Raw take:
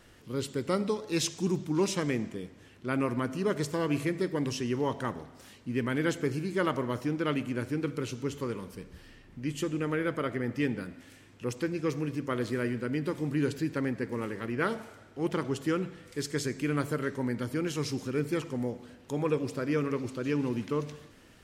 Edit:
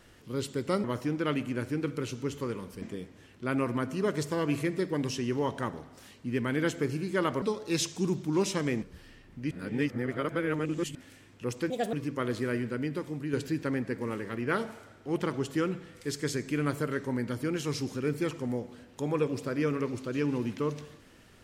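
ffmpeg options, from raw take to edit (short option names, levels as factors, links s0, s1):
-filter_complex "[0:a]asplit=10[s0][s1][s2][s3][s4][s5][s6][s7][s8][s9];[s0]atrim=end=0.842[s10];[s1]atrim=start=6.838:end=8.822[s11];[s2]atrim=start=2.238:end=6.842[s12];[s3]atrim=start=0.838:end=2.242[s13];[s4]atrim=start=8.818:end=9.512[s14];[s5]atrim=start=9.508:end=10.952,asetpts=PTS-STARTPTS,areverse[s15];[s6]atrim=start=10.948:end=11.704[s16];[s7]atrim=start=11.7:end=12.04,asetpts=PTS-STARTPTS,asetrate=64827,aresample=44100[s17];[s8]atrim=start=12.036:end=13.44,asetpts=PTS-STARTPTS,afade=t=out:st=0.764:d=0.64:silence=0.446684[s18];[s9]atrim=start=13.44,asetpts=PTS-STARTPTS,afade=t=in:d=0.004:c=hsin:silence=0.446684[s19];[s10][s11]acrossfade=d=0.004:c1=hsin:c2=hsin[s20];[s20][s12]acrossfade=d=0.004:c1=hsin:c2=hsin[s21];[s21][s13]acrossfade=d=0.004:c1=hsin:c2=hsin[s22];[s22][s14]acrossfade=d=0.004:c1=hsin:c2=hsin[s23];[s23][s15]acrossfade=d=0.004:c1=hsin:c2=hsin[s24];[s24][s16]acrossfade=d=0.004:c1=hsin:c2=hsin[s25];[s25][s17]acrossfade=d=0.004:c1=hsin:c2=hsin[s26];[s18][s19]concat=n=2:v=0:a=1[s27];[s26][s27]acrossfade=d=0.004:c1=hsin:c2=hsin"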